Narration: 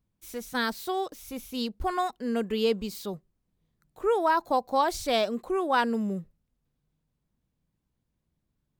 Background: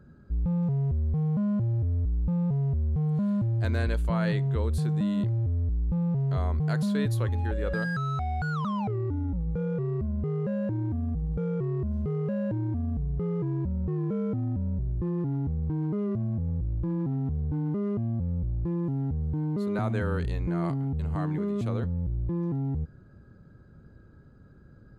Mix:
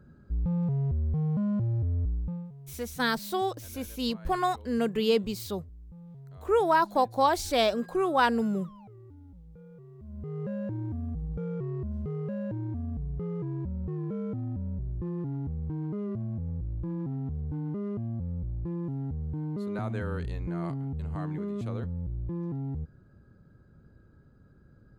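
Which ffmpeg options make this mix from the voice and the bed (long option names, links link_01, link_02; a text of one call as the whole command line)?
ffmpeg -i stem1.wav -i stem2.wav -filter_complex "[0:a]adelay=2450,volume=1dB[link_01];[1:a]volume=14.5dB,afade=type=out:start_time=2.06:duration=0.45:silence=0.112202,afade=type=in:start_time=9.98:duration=0.49:silence=0.158489[link_02];[link_01][link_02]amix=inputs=2:normalize=0" out.wav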